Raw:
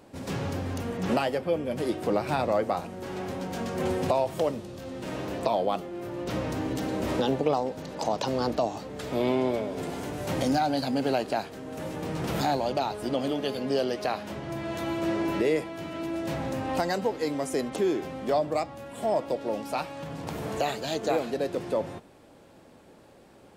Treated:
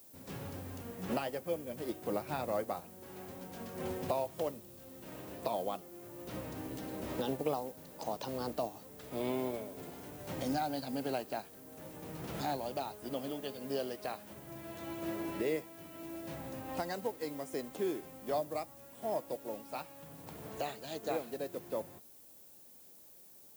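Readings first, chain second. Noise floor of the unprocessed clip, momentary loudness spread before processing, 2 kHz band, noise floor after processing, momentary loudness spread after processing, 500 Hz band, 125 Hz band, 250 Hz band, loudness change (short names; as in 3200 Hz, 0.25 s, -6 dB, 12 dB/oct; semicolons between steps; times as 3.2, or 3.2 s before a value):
-54 dBFS, 9 LU, -11.0 dB, -57 dBFS, 14 LU, -10.0 dB, -12.0 dB, -11.0 dB, -10.0 dB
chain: added noise violet -42 dBFS; upward expander 1.5:1, over -36 dBFS; gain -8 dB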